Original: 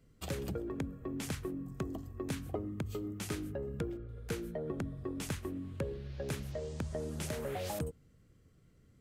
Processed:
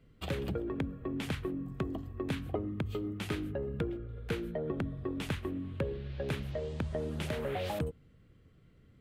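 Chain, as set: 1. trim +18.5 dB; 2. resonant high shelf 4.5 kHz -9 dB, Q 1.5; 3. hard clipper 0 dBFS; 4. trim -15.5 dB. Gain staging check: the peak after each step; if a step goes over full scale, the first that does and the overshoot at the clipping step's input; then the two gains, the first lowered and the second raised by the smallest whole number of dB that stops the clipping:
-4.0 dBFS, -4.0 dBFS, -4.0 dBFS, -19.5 dBFS; nothing clips

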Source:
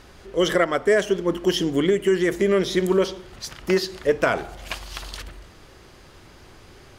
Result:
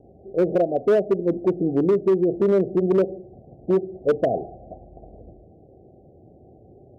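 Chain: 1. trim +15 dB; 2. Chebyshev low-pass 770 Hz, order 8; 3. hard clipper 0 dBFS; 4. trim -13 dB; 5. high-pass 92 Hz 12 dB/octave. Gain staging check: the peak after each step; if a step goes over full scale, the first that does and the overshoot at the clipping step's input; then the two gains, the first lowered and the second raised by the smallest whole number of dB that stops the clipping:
+7.5 dBFS, +6.0 dBFS, 0.0 dBFS, -13.0 dBFS, -10.0 dBFS; step 1, 6.0 dB; step 1 +9 dB, step 4 -7 dB

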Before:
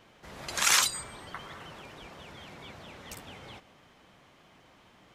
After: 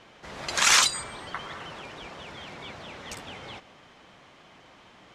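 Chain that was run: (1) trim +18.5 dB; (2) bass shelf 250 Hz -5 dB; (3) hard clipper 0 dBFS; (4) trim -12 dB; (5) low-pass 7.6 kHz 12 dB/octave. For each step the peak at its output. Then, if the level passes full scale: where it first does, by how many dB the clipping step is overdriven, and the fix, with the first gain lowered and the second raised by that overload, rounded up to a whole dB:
+7.5 dBFS, +7.5 dBFS, 0.0 dBFS, -12.0 dBFS, -11.0 dBFS; step 1, 7.5 dB; step 1 +10.5 dB, step 4 -4 dB

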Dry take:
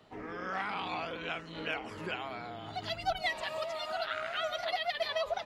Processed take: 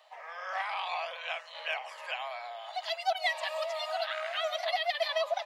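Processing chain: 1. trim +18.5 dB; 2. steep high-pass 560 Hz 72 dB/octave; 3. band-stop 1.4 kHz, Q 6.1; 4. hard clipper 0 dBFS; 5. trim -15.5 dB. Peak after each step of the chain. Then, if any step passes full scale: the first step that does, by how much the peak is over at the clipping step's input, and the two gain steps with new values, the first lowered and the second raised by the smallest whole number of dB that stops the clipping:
-2.5 dBFS, -2.5 dBFS, -2.5 dBFS, -2.5 dBFS, -18.0 dBFS; nothing clips

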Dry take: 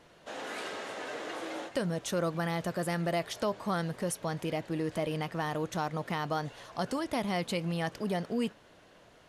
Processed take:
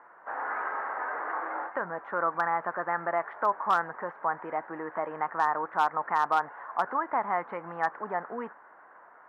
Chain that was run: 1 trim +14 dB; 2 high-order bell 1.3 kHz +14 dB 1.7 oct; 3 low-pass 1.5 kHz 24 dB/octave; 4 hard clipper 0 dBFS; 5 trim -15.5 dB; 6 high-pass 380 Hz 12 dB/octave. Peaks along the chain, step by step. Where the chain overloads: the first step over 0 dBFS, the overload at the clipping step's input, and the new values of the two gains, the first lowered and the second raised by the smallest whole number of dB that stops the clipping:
-3.0 dBFS, +5.0 dBFS, +4.0 dBFS, 0.0 dBFS, -15.5 dBFS, -13.0 dBFS; step 2, 4.0 dB; step 1 +10 dB, step 5 -11.5 dB

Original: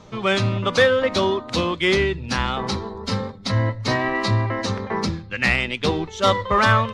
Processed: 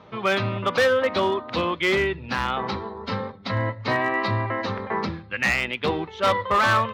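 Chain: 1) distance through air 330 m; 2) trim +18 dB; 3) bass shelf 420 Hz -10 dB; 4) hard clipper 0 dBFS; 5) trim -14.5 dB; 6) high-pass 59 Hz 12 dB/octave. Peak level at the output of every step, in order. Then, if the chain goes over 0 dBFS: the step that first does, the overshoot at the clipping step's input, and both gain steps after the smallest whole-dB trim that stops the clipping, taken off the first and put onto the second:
-6.5 dBFS, +11.5 dBFS, +9.5 dBFS, 0.0 dBFS, -14.5 dBFS, -12.0 dBFS; step 2, 9.5 dB; step 2 +8 dB, step 5 -4.5 dB

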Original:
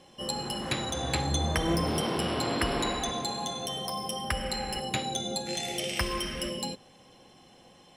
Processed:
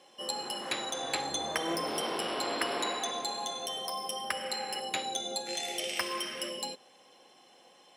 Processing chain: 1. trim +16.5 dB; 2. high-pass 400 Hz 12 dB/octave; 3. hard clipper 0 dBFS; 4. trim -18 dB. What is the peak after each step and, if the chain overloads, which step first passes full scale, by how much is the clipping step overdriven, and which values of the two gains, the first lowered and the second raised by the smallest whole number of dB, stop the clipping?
+5.0 dBFS, +4.0 dBFS, 0.0 dBFS, -18.0 dBFS; step 1, 4.0 dB; step 1 +12.5 dB, step 4 -14 dB

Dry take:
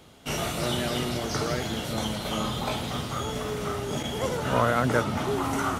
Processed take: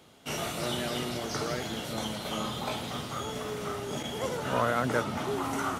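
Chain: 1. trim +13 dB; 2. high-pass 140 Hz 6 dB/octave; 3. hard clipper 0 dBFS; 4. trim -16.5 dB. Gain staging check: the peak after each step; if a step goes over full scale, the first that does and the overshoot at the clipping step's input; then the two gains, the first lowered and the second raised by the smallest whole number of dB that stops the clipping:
+3.5 dBFS, +4.0 dBFS, 0.0 dBFS, -16.5 dBFS; step 1, 4.0 dB; step 1 +9 dB, step 4 -12.5 dB

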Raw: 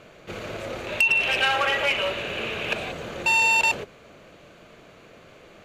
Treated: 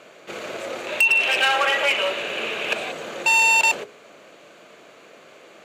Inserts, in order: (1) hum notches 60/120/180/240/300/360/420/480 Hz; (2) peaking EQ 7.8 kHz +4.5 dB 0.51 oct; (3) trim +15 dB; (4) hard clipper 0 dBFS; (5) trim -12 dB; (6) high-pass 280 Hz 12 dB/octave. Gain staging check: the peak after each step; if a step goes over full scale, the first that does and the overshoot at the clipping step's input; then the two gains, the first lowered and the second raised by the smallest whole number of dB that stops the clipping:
-11.5 dBFS, -10.0 dBFS, +5.0 dBFS, 0.0 dBFS, -12.0 dBFS, -9.5 dBFS; step 3, 5.0 dB; step 3 +10 dB, step 5 -7 dB

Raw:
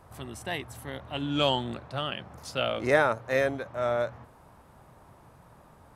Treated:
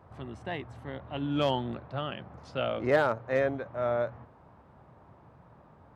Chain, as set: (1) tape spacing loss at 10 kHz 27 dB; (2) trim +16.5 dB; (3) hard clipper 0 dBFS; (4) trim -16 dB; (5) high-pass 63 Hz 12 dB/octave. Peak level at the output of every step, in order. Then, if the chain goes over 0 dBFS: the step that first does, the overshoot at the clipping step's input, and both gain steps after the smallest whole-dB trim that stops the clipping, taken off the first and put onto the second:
-12.5 dBFS, +4.0 dBFS, 0.0 dBFS, -16.0 dBFS, -14.5 dBFS; step 2, 4.0 dB; step 2 +12.5 dB, step 4 -12 dB

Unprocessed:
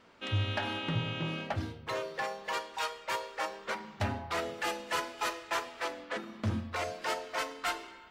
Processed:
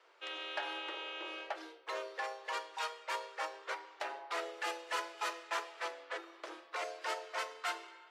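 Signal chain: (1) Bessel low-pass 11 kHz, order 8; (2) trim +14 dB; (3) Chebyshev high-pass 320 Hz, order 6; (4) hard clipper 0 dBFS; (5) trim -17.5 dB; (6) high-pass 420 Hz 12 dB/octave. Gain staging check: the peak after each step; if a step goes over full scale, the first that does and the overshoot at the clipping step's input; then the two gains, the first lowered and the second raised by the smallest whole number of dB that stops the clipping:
-21.0 dBFS, -7.0 dBFS, -5.5 dBFS, -5.5 dBFS, -23.0 dBFS, -22.5 dBFS; nothing clips

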